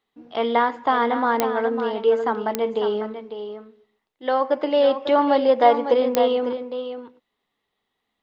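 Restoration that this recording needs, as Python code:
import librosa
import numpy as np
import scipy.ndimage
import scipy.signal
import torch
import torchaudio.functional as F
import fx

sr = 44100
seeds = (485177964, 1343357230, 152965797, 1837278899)

y = fx.fix_declick_ar(x, sr, threshold=10.0)
y = fx.fix_echo_inverse(y, sr, delay_ms=550, level_db=-9.5)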